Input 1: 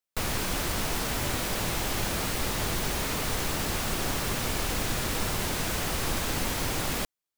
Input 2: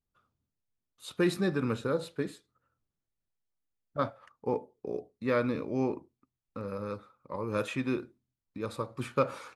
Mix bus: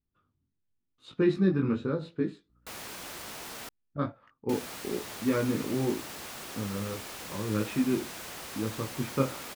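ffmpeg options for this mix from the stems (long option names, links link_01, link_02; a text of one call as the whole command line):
ffmpeg -i stem1.wav -i stem2.wav -filter_complex "[0:a]highpass=frequency=370:poles=1,aeval=exprs='val(0)+0.00158*(sin(2*PI*60*n/s)+sin(2*PI*2*60*n/s)/2+sin(2*PI*3*60*n/s)/3+sin(2*PI*4*60*n/s)/4+sin(2*PI*5*60*n/s)/5)':channel_layout=same,adelay=2500,volume=-10dB,asplit=3[link_01][link_02][link_03];[link_01]atrim=end=3.69,asetpts=PTS-STARTPTS,afade=type=out:start_time=3.686:duration=0.004:curve=hsin[link_04];[link_02]atrim=start=3.69:end=4.49,asetpts=PTS-STARTPTS,volume=0[link_05];[link_03]atrim=start=4.49,asetpts=PTS-STARTPTS,afade=type=in:duration=0.004:curve=hsin[link_06];[link_04][link_05][link_06]concat=n=3:v=0:a=1[link_07];[1:a]flanger=delay=18.5:depth=3.5:speed=0.92,lowpass=4000,lowshelf=frequency=420:width_type=q:width=1.5:gain=6.5,volume=0dB[link_08];[link_07][link_08]amix=inputs=2:normalize=0" out.wav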